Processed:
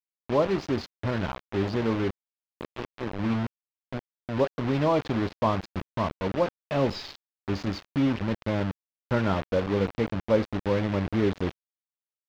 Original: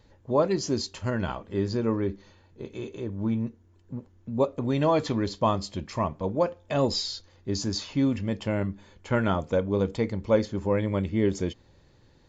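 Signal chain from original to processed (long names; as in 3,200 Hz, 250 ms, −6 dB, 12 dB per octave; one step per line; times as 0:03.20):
bit reduction 5 bits
high-frequency loss of the air 240 metres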